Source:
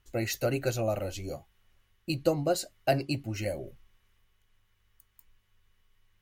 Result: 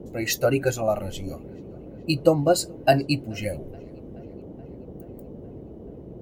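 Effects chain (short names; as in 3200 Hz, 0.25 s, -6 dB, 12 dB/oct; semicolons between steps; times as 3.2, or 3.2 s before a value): darkening echo 0.427 s, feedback 80%, low-pass 3800 Hz, level -22 dB; spectral noise reduction 10 dB; band noise 40–460 Hz -49 dBFS; gain +8.5 dB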